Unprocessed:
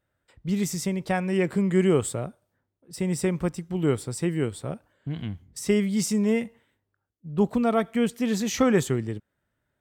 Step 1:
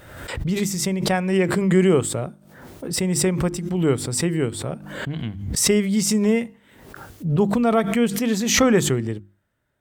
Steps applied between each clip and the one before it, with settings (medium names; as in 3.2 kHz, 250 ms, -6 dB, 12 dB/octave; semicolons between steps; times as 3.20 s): hum notches 50/100/150/200/250/300/350 Hz; swell ahead of each attack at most 54 dB/s; trim +4 dB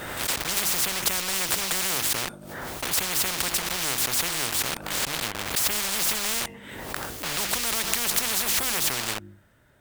in parallel at -4.5 dB: bit crusher 5-bit; on the sum: spectrum-flattening compressor 10:1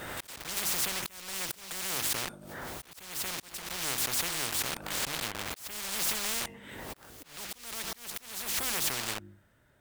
slow attack 483 ms; trim -5.5 dB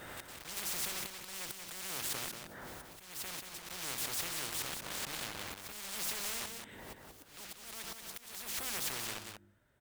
delay 184 ms -6 dB; trim -7.5 dB